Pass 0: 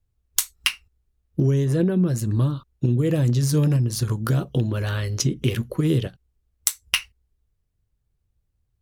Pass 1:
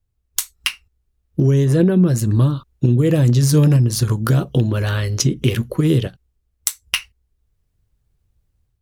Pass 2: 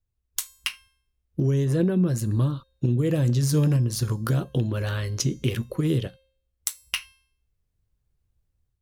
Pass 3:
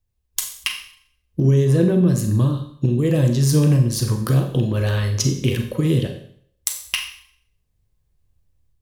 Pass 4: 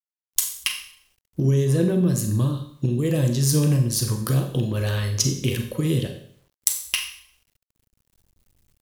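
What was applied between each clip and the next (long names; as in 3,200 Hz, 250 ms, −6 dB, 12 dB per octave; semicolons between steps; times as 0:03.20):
automatic gain control gain up to 7 dB
tuned comb filter 530 Hz, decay 0.58 s, mix 60%
notch filter 1,400 Hz, Q 7.5; on a send at −5 dB: convolution reverb RT60 0.60 s, pre-delay 30 ms; on the sum: level +4.5 dB
high-shelf EQ 4,300 Hz +8 dB; bit reduction 10 bits; level −4 dB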